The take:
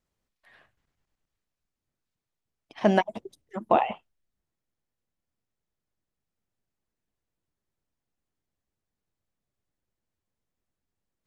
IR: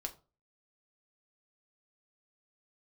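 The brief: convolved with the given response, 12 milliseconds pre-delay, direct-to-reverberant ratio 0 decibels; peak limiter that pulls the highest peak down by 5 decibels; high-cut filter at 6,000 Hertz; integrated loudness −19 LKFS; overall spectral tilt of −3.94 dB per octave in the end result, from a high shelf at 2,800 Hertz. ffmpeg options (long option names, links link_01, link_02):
-filter_complex "[0:a]lowpass=6000,highshelf=frequency=2800:gain=8,alimiter=limit=-11.5dB:level=0:latency=1,asplit=2[link_01][link_02];[1:a]atrim=start_sample=2205,adelay=12[link_03];[link_02][link_03]afir=irnorm=-1:irlink=0,volume=1.5dB[link_04];[link_01][link_04]amix=inputs=2:normalize=0,volume=5.5dB"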